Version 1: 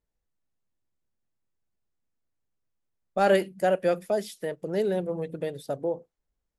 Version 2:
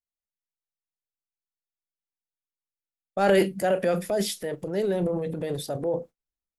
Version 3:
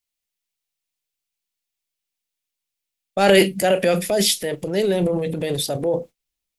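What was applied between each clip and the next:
transient shaper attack -1 dB, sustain +11 dB; gate -43 dBFS, range -25 dB; on a send at -13 dB: reverberation, pre-delay 6 ms
resonant high shelf 1.9 kHz +6 dB, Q 1.5; trim +6 dB

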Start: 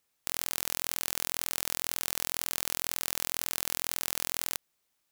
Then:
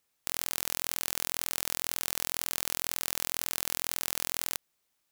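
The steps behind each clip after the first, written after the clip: no audible change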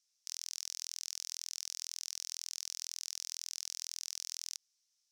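peak limiter -10 dBFS, peak gain reduction 6.5 dB; band-pass filter 5.6 kHz, Q 4.4; trim +8.5 dB

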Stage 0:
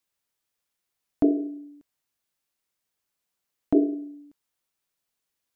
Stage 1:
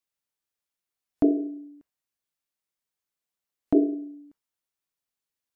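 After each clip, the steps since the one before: spectral noise reduction 7 dB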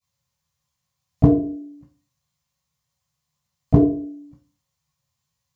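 reverberation RT60 0.35 s, pre-delay 12 ms, DRR -12.5 dB; trim -3.5 dB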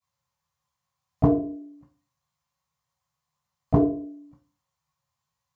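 peaking EQ 1 kHz +10 dB 1.8 oct; trim -7 dB

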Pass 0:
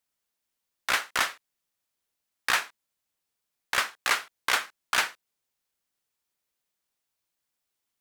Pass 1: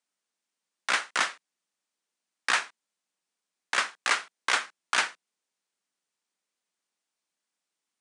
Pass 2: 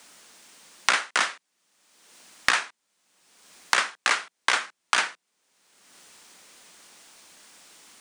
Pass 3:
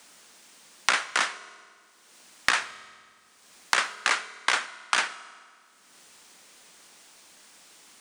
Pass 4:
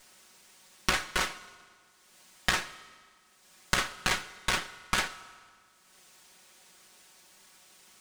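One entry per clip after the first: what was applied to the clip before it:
Chebyshev band-pass 170–9500 Hz, order 5
three bands compressed up and down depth 100%; trim +4 dB
reverberation RT60 1.8 s, pre-delay 108 ms, DRR 17 dB; trim -1.5 dB
comb filter that takes the minimum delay 5.4 ms; trim -2.5 dB

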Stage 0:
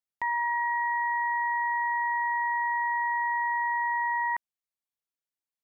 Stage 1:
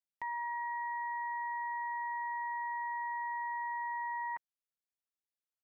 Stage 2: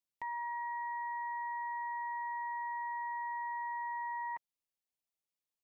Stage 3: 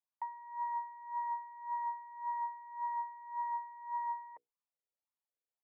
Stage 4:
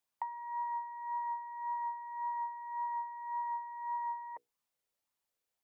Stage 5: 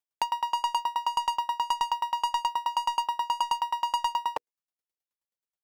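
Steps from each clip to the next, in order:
comb 6.6 ms, depth 31%; trim -9 dB
peaking EQ 1.5 kHz -14.5 dB 0.29 oct
hum notches 60/120/180/240/300/360/420/480 Hz; wah-wah 1.8 Hz 440–1100 Hz, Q 4.1; trim +5 dB
compression, threshold -43 dBFS, peak gain reduction 8.5 dB; trim +7.5 dB
waveshaping leveller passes 5; sawtooth tremolo in dB decaying 9.4 Hz, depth 30 dB; trim +8.5 dB

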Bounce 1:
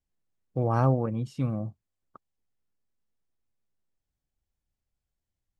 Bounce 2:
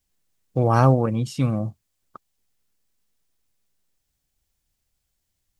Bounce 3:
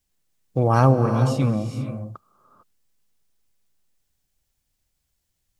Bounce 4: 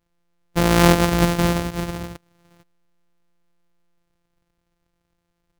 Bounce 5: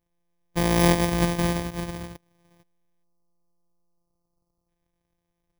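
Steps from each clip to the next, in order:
treble shelf 2.3 kHz +10 dB; trim +6.5 dB
gated-style reverb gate 480 ms rising, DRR 7 dB
sorted samples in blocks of 256 samples; trim +1.5 dB
bit-reversed sample order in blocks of 32 samples; spectral selection erased 3.04–4.69 s, 1.4–4 kHz; trim -5 dB

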